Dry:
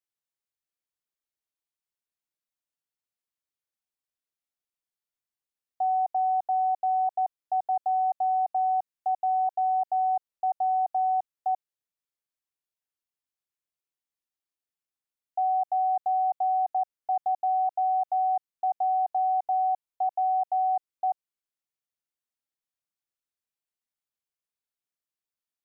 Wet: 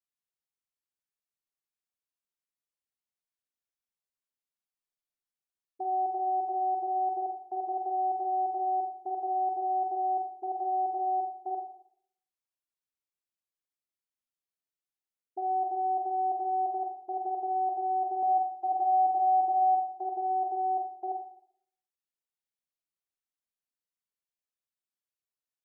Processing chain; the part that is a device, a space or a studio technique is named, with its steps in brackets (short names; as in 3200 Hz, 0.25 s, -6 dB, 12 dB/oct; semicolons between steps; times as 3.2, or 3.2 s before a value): octave pedal (harmoniser -12 st -8 dB); 18.22–19.87 comb 6.5 ms, depth 99%; Schroeder reverb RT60 0.66 s, combs from 30 ms, DRR 2 dB; gain -8.5 dB